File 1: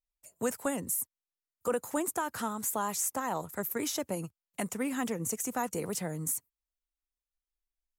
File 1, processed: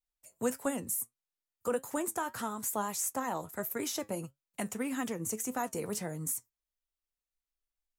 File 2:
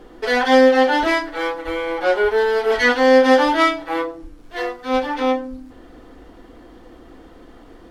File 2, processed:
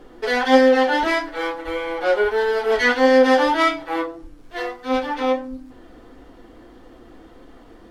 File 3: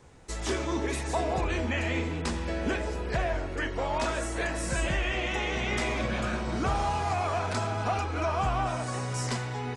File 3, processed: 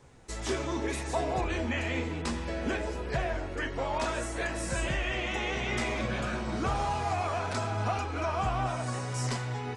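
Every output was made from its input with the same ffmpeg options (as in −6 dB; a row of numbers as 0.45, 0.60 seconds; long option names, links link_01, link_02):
-af "flanger=delay=6.9:depth=2.8:regen=70:speed=1.6:shape=triangular,volume=2.5dB"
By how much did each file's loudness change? −2.0, −1.5, −2.0 LU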